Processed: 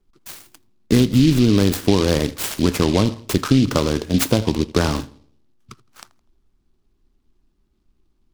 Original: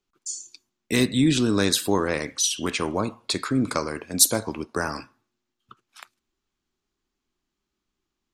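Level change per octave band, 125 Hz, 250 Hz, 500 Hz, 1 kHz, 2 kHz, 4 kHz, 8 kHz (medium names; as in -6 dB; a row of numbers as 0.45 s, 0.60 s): +11.5 dB, +7.5 dB, +6.0 dB, +2.5 dB, +0.5 dB, +1.0 dB, -5.5 dB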